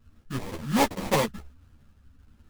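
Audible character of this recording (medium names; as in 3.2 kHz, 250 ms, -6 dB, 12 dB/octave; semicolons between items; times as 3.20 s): a buzz of ramps at a fixed pitch in blocks of 8 samples; phasing stages 4, 1.3 Hz, lowest notch 620–3000 Hz; aliases and images of a low sample rate 1.5 kHz, jitter 20%; a shimmering, thickened sound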